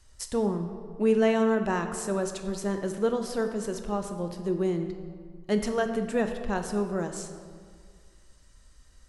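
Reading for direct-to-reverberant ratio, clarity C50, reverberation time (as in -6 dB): 5.5 dB, 7.5 dB, 1.9 s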